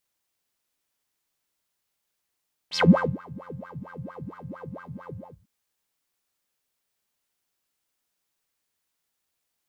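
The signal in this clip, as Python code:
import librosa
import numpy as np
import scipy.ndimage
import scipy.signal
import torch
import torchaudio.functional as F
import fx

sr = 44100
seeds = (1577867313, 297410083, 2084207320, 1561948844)

y = fx.sub_patch_wobble(sr, seeds[0], note=53, wave='square', wave2='saw', interval_st=19, level2_db=-1.0, sub_db=-1, noise_db=-30.0, kind='bandpass', cutoff_hz=140.0, q=12.0, env_oct=4.0, env_decay_s=0.21, env_sustain_pct=40, attack_ms=54.0, decay_s=0.41, sustain_db=-23, release_s=0.36, note_s=2.39, lfo_hz=4.4, wobble_oct=1.8)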